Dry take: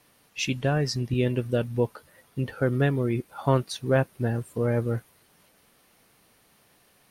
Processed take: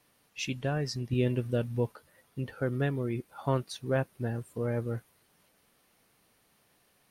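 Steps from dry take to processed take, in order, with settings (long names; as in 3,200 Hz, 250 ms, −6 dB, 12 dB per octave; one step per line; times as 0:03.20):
0:01.12–0:01.92: harmonic and percussive parts rebalanced harmonic +4 dB
level −6.5 dB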